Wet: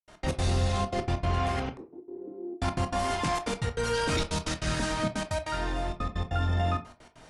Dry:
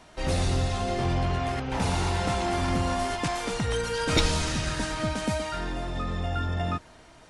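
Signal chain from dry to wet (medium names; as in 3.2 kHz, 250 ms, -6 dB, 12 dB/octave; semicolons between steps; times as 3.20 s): peak limiter -20 dBFS, peak gain reduction 10.5 dB; trance gate ".x.x.xxxxxx" 195 bpm -60 dB; 1.77–2.61 s: Butterworth band-pass 350 Hz, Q 3.3; reverberation RT60 0.35 s, pre-delay 18 ms, DRR 8 dB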